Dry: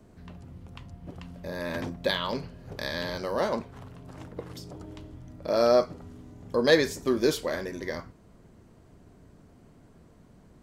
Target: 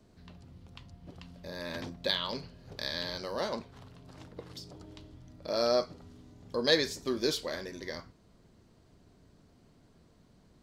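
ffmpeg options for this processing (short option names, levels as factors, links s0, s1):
-af "equalizer=f=4300:t=o:w=1.1:g=9.5,volume=0.447"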